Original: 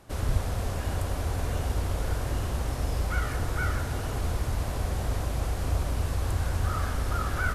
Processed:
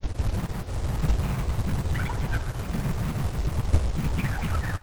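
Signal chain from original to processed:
parametric band 67 Hz +11.5 dB 0.37 octaves
time stretch by overlap-add 0.64×, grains 23 ms
granular cloud, pitch spread up and down by 12 semitones
in parallel at −4 dB: wave folding −27 dBFS
on the sum: feedback echo with a high-pass in the loop 73 ms, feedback 78%, level −12.5 dB
expander for the loud parts 2.5 to 1, over −33 dBFS
level +7 dB

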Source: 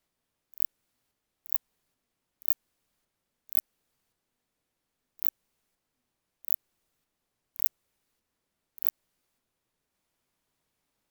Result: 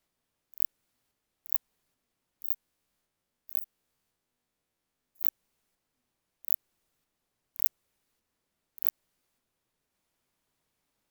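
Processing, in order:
0:02.44–0:05.23: spectrum averaged block by block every 50 ms

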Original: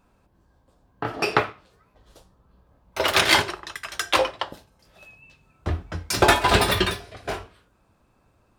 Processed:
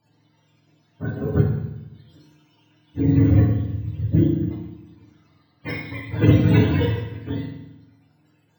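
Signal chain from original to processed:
frequency axis turned over on the octave scale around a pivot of 420 Hz
feedback delay network reverb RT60 0.89 s, low-frequency decay 1.35×, high-frequency decay 0.9×, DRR −2.5 dB
bad sample-rate conversion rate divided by 2×, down filtered, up hold
level −2.5 dB

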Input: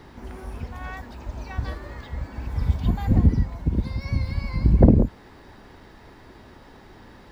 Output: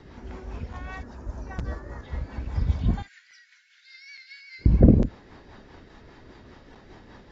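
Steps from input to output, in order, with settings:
0:01.03–0:02.05: flat-topped bell 3,100 Hz −10.5 dB 1.3 octaves
0:03.02–0:04.66: Chebyshev high-pass filter 1,500 Hz, order 6
rotating-speaker cabinet horn 5 Hz
regular buffer underruns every 0.86 s, samples 256, zero, from 0:00.73
AAC 24 kbit/s 16,000 Hz

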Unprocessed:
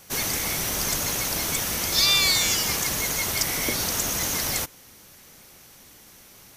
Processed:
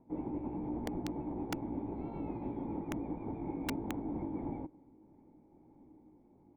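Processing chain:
pitch glide at a constant tempo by +3.5 semitones ending unshifted
formant resonators in series u
wrap-around overflow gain 33.5 dB
level +6.5 dB

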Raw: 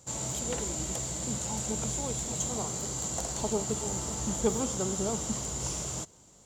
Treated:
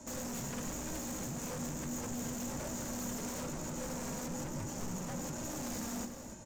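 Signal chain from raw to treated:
octave-band graphic EQ 125/250/500/1,000/2,000/4,000 Hz +4/+11/−9/+12/+7/−7 dB
downward compressor, threshold −32 dBFS, peak gain reduction 14.5 dB
notch comb filter 540 Hz
tube saturation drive 40 dB, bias 0.55
frequency shifter −370 Hz
flanger 1.1 Hz, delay 3.1 ms, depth 1.3 ms, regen +26%
sine wavefolder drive 6 dB, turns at −38.5 dBFS
single-tap delay 289 ms −10.5 dB
on a send at −8.5 dB: convolution reverb, pre-delay 6 ms
on the sum: level +1 dB

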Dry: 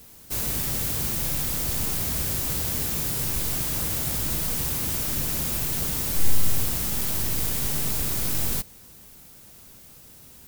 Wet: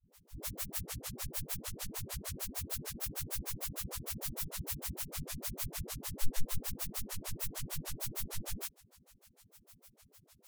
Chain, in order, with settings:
granular cloud 92 ms, grains 6.6 per second, spray 26 ms, pitch spread up and down by 0 semitones
all-pass dispersion highs, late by 117 ms, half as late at 400 Hz
formants moved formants −2 semitones
level −6.5 dB

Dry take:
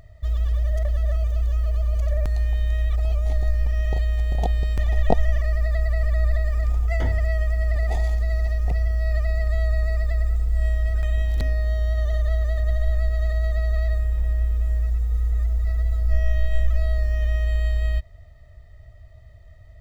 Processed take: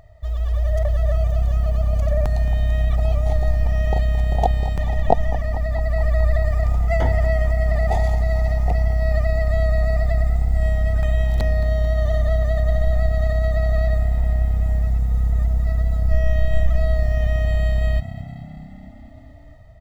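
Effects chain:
automatic gain control gain up to 4.5 dB
parametric band 790 Hz +9.5 dB 0.95 octaves
on a send: echo with shifted repeats 220 ms, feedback 64%, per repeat +33 Hz, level −15 dB
on the sum: level −2 dB

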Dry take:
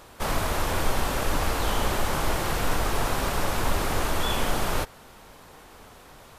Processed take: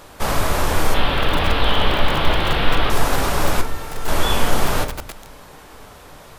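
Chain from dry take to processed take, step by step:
0:00.94–0:02.90: high shelf with overshoot 4,900 Hz −13.5 dB, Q 3
0:03.61–0:04.08: tuned comb filter 450 Hz, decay 0.24 s, harmonics all, mix 80%
rectangular room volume 94 cubic metres, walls mixed, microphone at 0.35 metres
feedback echo at a low word length 464 ms, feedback 55%, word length 3 bits, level −15 dB
level +5.5 dB

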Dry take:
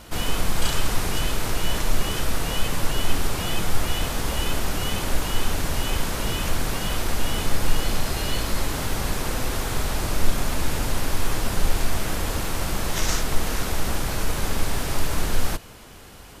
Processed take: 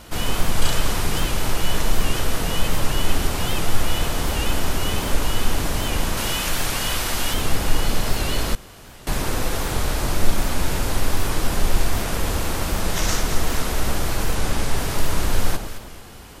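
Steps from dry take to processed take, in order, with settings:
0:06.17–0:07.34: tilt shelving filter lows −4.5 dB, about 870 Hz
0:14.35–0:14.77: low-pass filter 12,000 Hz 12 dB per octave
delay that swaps between a low-pass and a high-pass 109 ms, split 1,100 Hz, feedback 58%, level −5 dB
0:08.55–0:09.07: fill with room tone
wow of a warped record 78 rpm, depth 100 cents
level +1.5 dB

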